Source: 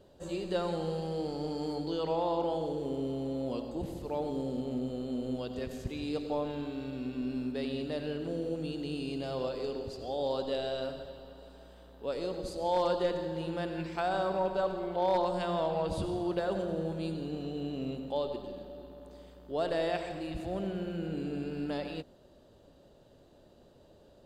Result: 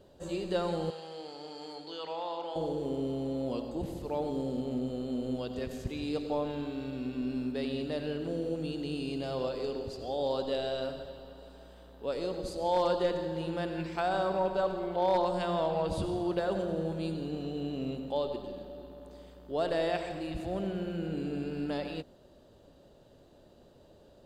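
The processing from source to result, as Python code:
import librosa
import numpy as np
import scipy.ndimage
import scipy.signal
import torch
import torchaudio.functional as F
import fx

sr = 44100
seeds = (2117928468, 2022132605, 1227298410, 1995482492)

y = fx.bandpass_q(x, sr, hz=2700.0, q=0.5, at=(0.9, 2.56))
y = y * librosa.db_to_amplitude(1.0)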